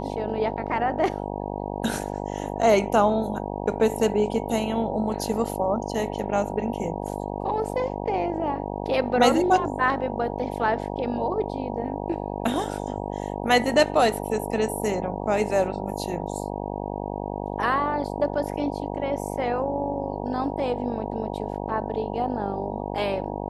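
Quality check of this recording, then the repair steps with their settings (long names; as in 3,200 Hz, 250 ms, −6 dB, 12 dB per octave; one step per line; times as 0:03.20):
mains buzz 50 Hz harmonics 19 −31 dBFS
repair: hum removal 50 Hz, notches 19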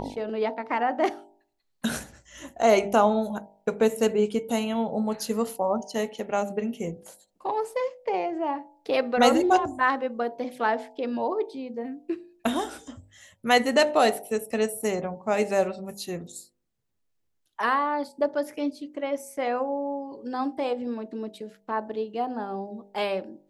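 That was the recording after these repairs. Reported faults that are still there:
none of them is left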